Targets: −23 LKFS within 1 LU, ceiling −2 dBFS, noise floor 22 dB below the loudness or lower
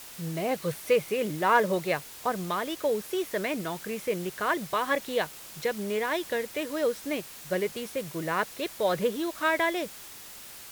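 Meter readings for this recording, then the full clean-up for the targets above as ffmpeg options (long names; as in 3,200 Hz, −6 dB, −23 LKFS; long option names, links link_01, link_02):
background noise floor −45 dBFS; target noise floor −52 dBFS; integrated loudness −29.5 LKFS; sample peak −10.0 dBFS; target loudness −23.0 LKFS
→ -af "afftdn=noise_reduction=7:noise_floor=-45"
-af "volume=6.5dB"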